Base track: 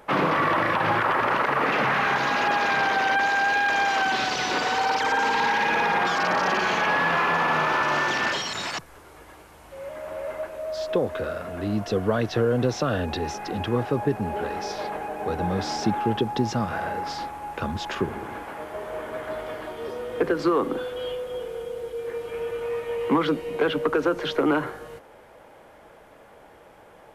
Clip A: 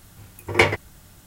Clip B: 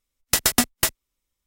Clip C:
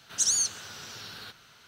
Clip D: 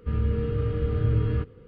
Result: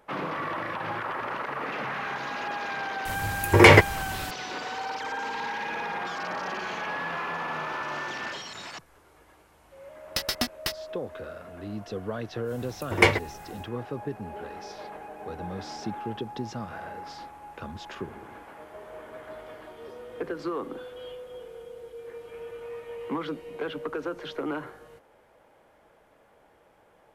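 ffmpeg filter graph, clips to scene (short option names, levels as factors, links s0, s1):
-filter_complex "[1:a]asplit=2[s0][s1];[0:a]volume=0.316[s2];[s0]alimiter=level_in=4.47:limit=0.891:release=50:level=0:latency=1[s3];[2:a]highshelf=f=6100:t=q:w=3:g=-6.5[s4];[s3]atrim=end=1.26,asetpts=PTS-STARTPTS,volume=0.891,afade=t=in:d=0.004:c=hsin,afade=t=out:st=1.256:d=0.004:c=hsin,adelay=134505S[s5];[s4]atrim=end=1.46,asetpts=PTS-STARTPTS,volume=0.376,afade=t=in:d=0.004:c=hsin,afade=t=out:st=1.456:d=0.004:c=hsin,adelay=9830[s6];[s1]atrim=end=1.26,asetpts=PTS-STARTPTS,volume=0.794,afade=t=in:d=0.1,afade=t=out:st=1.16:d=0.1,adelay=12430[s7];[s2][s5][s6][s7]amix=inputs=4:normalize=0"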